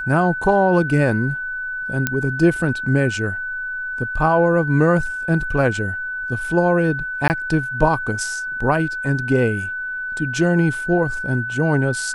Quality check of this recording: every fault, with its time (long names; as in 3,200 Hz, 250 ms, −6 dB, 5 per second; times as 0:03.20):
whistle 1,500 Hz −24 dBFS
0:02.07: click −4 dBFS
0:07.28–0:07.30: drop-out 19 ms